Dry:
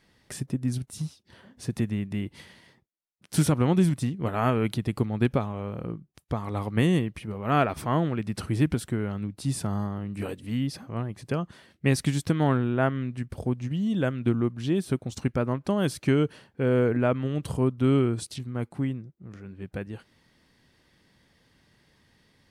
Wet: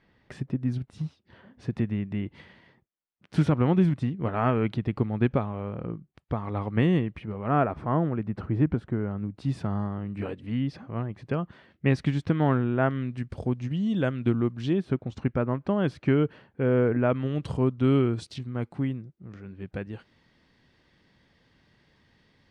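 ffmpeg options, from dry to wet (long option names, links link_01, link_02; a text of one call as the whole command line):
ffmpeg -i in.wav -af "asetnsamples=nb_out_samples=441:pad=0,asendcmd='7.48 lowpass f 1400;9.35 lowpass f 2700;12.91 lowpass f 5400;14.73 lowpass f 2400;17.1 lowpass f 4600',lowpass=2600" out.wav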